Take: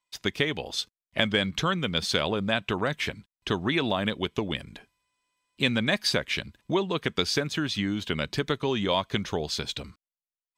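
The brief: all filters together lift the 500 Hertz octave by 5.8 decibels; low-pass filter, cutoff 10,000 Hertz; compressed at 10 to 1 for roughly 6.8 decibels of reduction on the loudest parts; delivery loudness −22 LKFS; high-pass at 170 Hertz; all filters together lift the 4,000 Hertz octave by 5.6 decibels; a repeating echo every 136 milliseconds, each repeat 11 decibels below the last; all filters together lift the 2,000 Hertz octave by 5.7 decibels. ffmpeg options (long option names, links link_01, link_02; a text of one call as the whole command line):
ffmpeg -i in.wav -af "highpass=170,lowpass=10000,equalizer=frequency=500:width_type=o:gain=7,equalizer=frequency=2000:width_type=o:gain=5.5,equalizer=frequency=4000:width_type=o:gain=5,acompressor=threshold=-21dB:ratio=10,aecho=1:1:136|272|408:0.282|0.0789|0.0221,volume=4.5dB" out.wav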